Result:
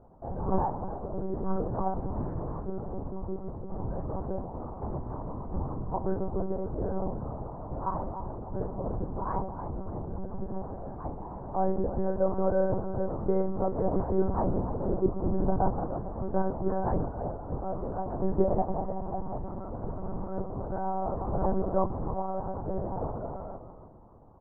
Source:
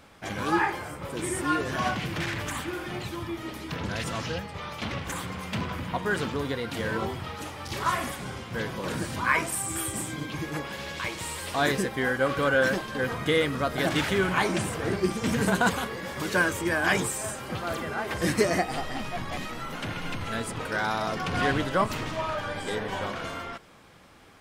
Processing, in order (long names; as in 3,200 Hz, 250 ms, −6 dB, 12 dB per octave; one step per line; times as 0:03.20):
echo with shifted repeats 297 ms, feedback 36%, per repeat −96 Hz, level −11 dB
one-pitch LPC vocoder at 8 kHz 190 Hz
Butterworth low-pass 950 Hz 36 dB per octave